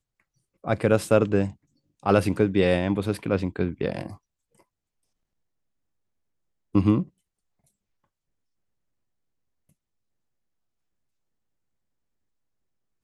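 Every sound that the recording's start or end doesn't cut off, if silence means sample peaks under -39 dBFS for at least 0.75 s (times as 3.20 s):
6.75–7.03 s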